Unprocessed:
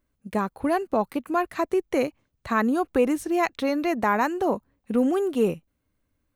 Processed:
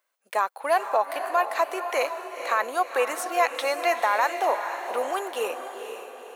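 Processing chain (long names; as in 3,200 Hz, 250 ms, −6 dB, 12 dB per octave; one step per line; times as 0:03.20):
high-pass filter 620 Hz 24 dB per octave
brickwall limiter −17.5 dBFS, peak gain reduction 7.5 dB
on a send: feedback delay with all-pass diffusion 492 ms, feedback 46%, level −8 dB
on the sum: level +5.5 dB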